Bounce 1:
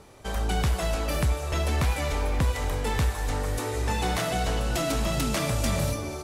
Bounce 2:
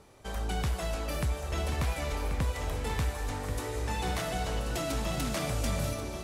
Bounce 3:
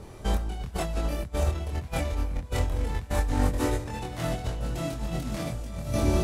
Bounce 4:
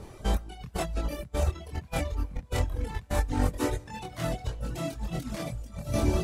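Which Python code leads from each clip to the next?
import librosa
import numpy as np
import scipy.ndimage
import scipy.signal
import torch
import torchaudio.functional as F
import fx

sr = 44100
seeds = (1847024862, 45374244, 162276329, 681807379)

y1 = x + 10.0 ** (-9.0 / 20.0) * np.pad(x, (int(1084 * sr / 1000.0), 0))[:len(x)]
y1 = y1 * 10.0 ** (-6.0 / 20.0)
y2 = fx.over_compress(y1, sr, threshold_db=-36.0, ratio=-0.5)
y2 = fx.low_shelf(y2, sr, hz=390.0, db=10.0)
y2 = fx.doubler(y2, sr, ms=24.0, db=-2)
y3 = fx.dereverb_blind(y2, sr, rt60_s=1.4)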